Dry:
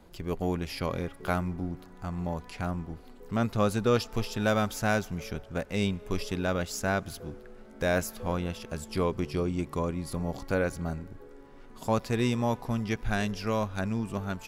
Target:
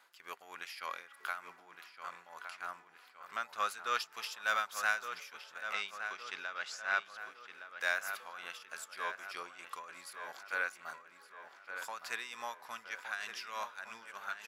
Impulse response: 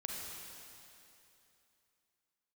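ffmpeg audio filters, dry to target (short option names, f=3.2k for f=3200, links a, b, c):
-filter_complex "[0:a]asettb=1/sr,asplit=3[a][b][c];[a]atrim=end=5.734[d];[b]atrim=start=5.73:end=7.18,asetpts=PTS-STARTPTS,afade=t=in:d=0.004:c=qsin,afade=t=out:st=1.446:d=0.004:c=qsin,lowpass=5.3k[e];[c]atrim=start=7.176[f];[d][e]acrossfade=d=0.004:c1=hsin:c2=qsin[g];[g][f]acrossfade=d=0.004:c1=qsin:c2=hsin,asplit=2[h][i];[i]asoftclip=type=tanh:threshold=-27dB,volume=-12dB[j];[h][j]amix=inputs=2:normalize=0,highpass=f=1.4k:t=q:w=1.7,tremolo=f=3.3:d=0.71,asplit=2[k][l];[l]adelay=1165,lowpass=f=3.2k:p=1,volume=-8dB,asplit=2[m][n];[n]adelay=1165,lowpass=f=3.2k:p=1,volume=0.5,asplit=2[o][p];[p]adelay=1165,lowpass=f=3.2k:p=1,volume=0.5,asplit=2[q][r];[r]adelay=1165,lowpass=f=3.2k:p=1,volume=0.5,asplit=2[s][t];[t]adelay=1165,lowpass=f=3.2k:p=1,volume=0.5,asplit=2[u][v];[v]adelay=1165,lowpass=f=3.2k:p=1,volume=0.5[w];[k][m][o][q][s][u][w]amix=inputs=7:normalize=0,volume=-3dB"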